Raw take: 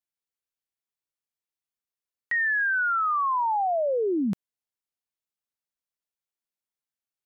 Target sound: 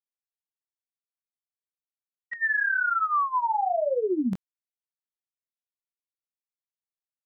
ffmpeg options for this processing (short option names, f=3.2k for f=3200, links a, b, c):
-af "flanger=delay=18.5:depth=3.9:speed=1,agate=range=-33dB:threshold=-28dB:ratio=3:detection=peak,volume=2.5dB"